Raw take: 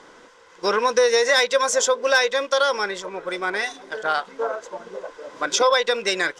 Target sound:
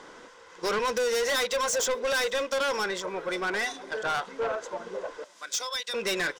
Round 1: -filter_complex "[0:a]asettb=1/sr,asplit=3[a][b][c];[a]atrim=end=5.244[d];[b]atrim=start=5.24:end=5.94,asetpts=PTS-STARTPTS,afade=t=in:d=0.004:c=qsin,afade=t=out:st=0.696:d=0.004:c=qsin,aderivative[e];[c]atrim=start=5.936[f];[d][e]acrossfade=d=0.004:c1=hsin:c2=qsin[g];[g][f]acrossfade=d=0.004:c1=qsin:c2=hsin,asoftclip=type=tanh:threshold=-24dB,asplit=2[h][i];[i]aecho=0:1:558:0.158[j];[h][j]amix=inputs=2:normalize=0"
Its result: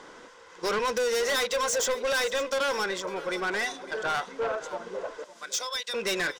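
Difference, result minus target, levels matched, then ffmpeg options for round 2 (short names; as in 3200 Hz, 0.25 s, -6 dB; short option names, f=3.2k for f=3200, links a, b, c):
echo-to-direct +11.5 dB
-filter_complex "[0:a]asettb=1/sr,asplit=3[a][b][c];[a]atrim=end=5.244[d];[b]atrim=start=5.24:end=5.94,asetpts=PTS-STARTPTS,afade=t=in:d=0.004:c=qsin,afade=t=out:st=0.696:d=0.004:c=qsin,aderivative[e];[c]atrim=start=5.936[f];[d][e]acrossfade=d=0.004:c1=hsin:c2=qsin[g];[g][f]acrossfade=d=0.004:c1=qsin:c2=hsin,asoftclip=type=tanh:threshold=-24dB,asplit=2[h][i];[i]aecho=0:1:558:0.0422[j];[h][j]amix=inputs=2:normalize=0"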